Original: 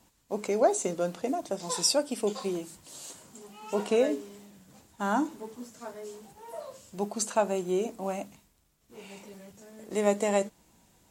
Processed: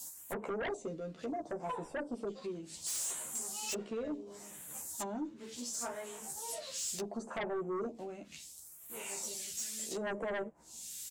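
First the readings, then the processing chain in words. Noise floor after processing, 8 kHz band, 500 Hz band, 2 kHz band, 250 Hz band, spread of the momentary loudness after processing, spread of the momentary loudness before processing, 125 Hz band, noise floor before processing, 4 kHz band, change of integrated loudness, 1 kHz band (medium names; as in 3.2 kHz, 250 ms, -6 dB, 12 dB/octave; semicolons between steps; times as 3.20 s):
-54 dBFS, -2.0 dB, -11.0 dB, -4.0 dB, -9.0 dB, 9 LU, 21 LU, -9.5 dB, -67 dBFS, -8.0 dB, -10.0 dB, -10.0 dB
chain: single-diode clipper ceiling -12.5 dBFS; in parallel at +0.5 dB: peak limiter -23.5 dBFS, peak gain reduction 11 dB; on the sum: low-pass that closes with the level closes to 610 Hz, closed at -24 dBFS; pre-emphasis filter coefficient 0.97; doubling 13 ms -3.5 dB; phase shifter stages 2, 0.7 Hz, lowest notch 780–4700 Hz; sine folder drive 13 dB, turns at -31.5 dBFS; trim -1.5 dB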